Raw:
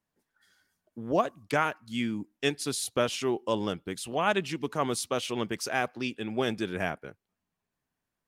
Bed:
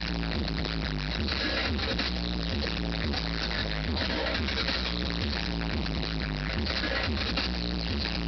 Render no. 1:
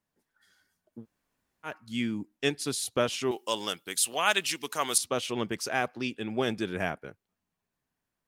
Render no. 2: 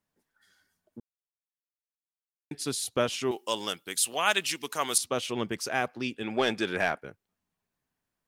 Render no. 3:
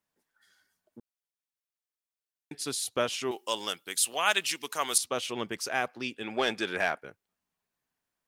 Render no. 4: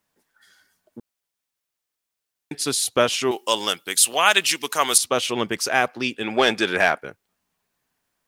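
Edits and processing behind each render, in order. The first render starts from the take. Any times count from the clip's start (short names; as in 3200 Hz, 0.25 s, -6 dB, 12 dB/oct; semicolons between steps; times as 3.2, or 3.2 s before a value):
1.01–1.68 room tone, crossfade 0.10 s; 3.31–4.98 tilt +4.5 dB/oct
1–2.51 mute; 6.23–7.01 overdrive pedal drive 13 dB, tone 5100 Hz, clips at -13 dBFS
low shelf 310 Hz -8 dB
gain +10 dB; limiter -2 dBFS, peak gain reduction 2.5 dB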